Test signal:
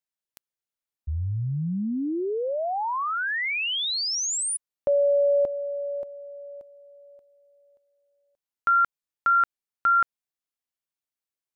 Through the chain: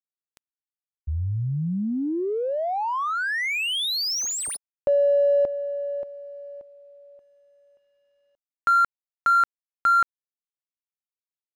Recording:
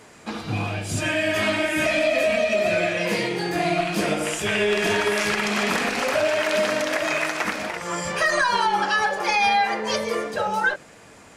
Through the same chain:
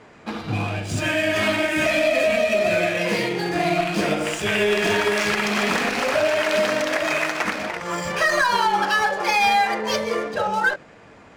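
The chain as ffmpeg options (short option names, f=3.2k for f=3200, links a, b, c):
-af "acrusher=bits=11:mix=0:aa=0.000001,adynamicsmooth=sensitivity=8:basefreq=3.2k,volume=1.5dB"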